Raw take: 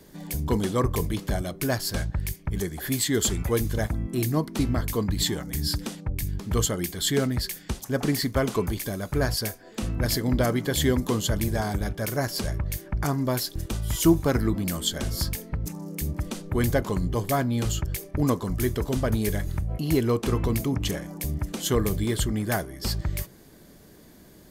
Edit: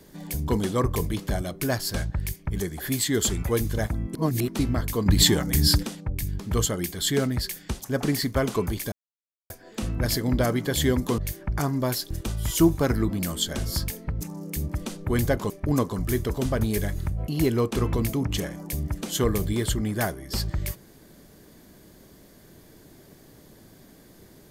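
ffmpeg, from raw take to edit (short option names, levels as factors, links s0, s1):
-filter_complex "[0:a]asplit=9[s0][s1][s2][s3][s4][s5][s6][s7][s8];[s0]atrim=end=4.152[s9];[s1]atrim=start=4.148:end=4.482,asetpts=PTS-STARTPTS,areverse[s10];[s2]atrim=start=4.478:end=5.062[s11];[s3]atrim=start=5.058:end=5.832,asetpts=PTS-STARTPTS,volume=2.37[s12];[s4]atrim=start=5.828:end=8.92,asetpts=PTS-STARTPTS,afade=t=out:st=3.088:d=0.004:c=hsin[s13];[s5]atrim=start=8.92:end=9.5,asetpts=PTS-STARTPTS,volume=0[s14];[s6]atrim=start=9.5:end=11.182,asetpts=PTS-STARTPTS,afade=t=in:d=0.004:c=hsin[s15];[s7]atrim=start=12.628:end=16.952[s16];[s8]atrim=start=18.008[s17];[s9][s10]acrossfade=d=0.004:c1=hsin:c2=hsin[s18];[s18][s11]acrossfade=d=0.004:c1=hsin:c2=hsin[s19];[s19][s12]acrossfade=d=0.004:c1=hsin:c2=hsin[s20];[s13][s14][s15]concat=n=3:v=0:a=1[s21];[s20][s21]acrossfade=d=0.004:c1=hsin:c2=hsin[s22];[s22][s16]acrossfade=d=0.004:c1=hsin:c2=hsin[s23];[s23][s17]acrossfade=d=0.004:c1=hsin:c2=hsin"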